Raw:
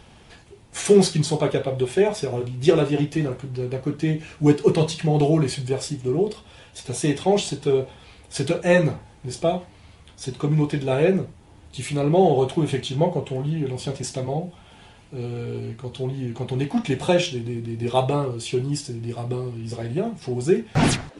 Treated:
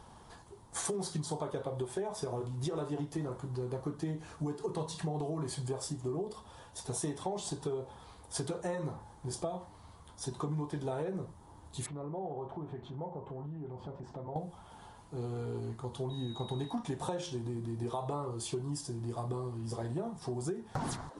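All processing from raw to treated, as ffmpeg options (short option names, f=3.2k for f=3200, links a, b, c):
-filter_complex "[0:a]asettb=1/sr,asplit=3[a][b][c];[a]atrim=end=11.864[d];[b]atrim=start=11.86:end=14.36,asetpts=PTS-STARTPTS,afade=t=in:d=0.004:c=qsin,afade=t=out:st=2.496:d=0.004:c=qsin,lowpass=1.6k,acompressor=threshold=-36dB:ratio=3:attack=3.2:release=140:knee=1:detection=peak[e];[c]atrim=start=14.356[f];[d][e]acrossfade=d=0.004:c1=hsin:c2=qsin[g];[g][f]acrossfade=d=0.004:c1=qsin:c2=hsin,asettb=1/sr,asplit=3[h][i][j];[h]atrim=end=16.104[k];[i]atrim=start=16.1:end=16.73,asetpts=PTS-STARTPTS,afade=t=in:d=0.004:c=qsin,afade=t=out:st=0.626:d=0.004:c=qsin,agate=range=-33dB:threshold=-34dB:ratio=3:release=100:detection=peak,aeval=exprs='val(0)+0.0158*sin(2*PI*3800*n/s)':c=same[l];[j]atrim=start=16.726[m];[k][l]acrossfade=d=0.004:c1=hsin:c2=qsin[n];[n][m]acrossfade=d=0.004:c1=qsin:c2=hsin,equalizer=f=1k:t=o:w=0.67:g=11,equalizer=f=2.5k:t=o:w=0.67:g=-12,equalizer=f=10k:t=o:w=0.67:g=5,alimiter=limit=-12dB:level=0:latency=1:release=137,acompressor=threshold=-26dB:ratio=6,volume=-7dB"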